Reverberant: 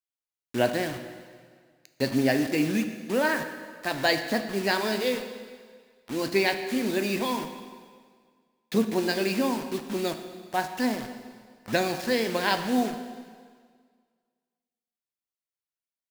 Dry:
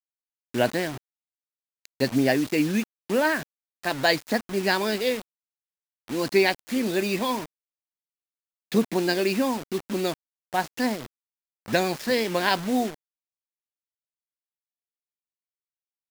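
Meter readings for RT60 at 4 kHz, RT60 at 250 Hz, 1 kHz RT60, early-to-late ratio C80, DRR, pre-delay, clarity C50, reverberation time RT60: 1.7 s, 1.8 s, 1.8 s, 10.0 dB, 7.0 dB, 4 ms, 9.0 dB, 1.8 s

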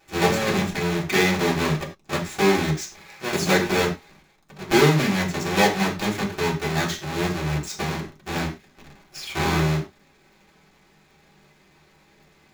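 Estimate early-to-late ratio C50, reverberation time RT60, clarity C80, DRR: 10.0 dB, not exponential, 14.5 dB, -4.0 dB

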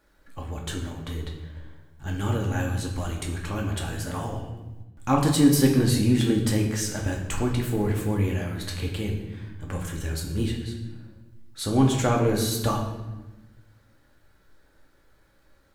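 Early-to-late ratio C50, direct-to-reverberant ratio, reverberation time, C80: 5.5 dB, -0.5 dB, 1.1 s, 7.5 dB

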